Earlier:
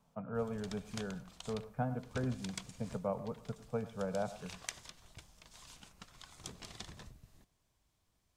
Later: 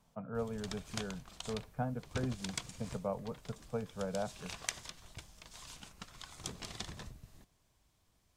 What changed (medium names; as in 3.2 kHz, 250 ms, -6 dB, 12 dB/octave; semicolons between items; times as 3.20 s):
background +4.5 dB; reverb: off